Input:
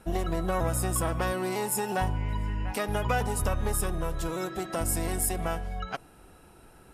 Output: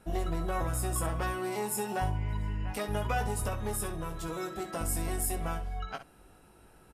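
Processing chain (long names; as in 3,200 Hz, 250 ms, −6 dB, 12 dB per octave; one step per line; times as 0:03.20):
ambience of single reflections 19 ms −5.5 dB, 66 ms −11.5 dB
level −5.5 dB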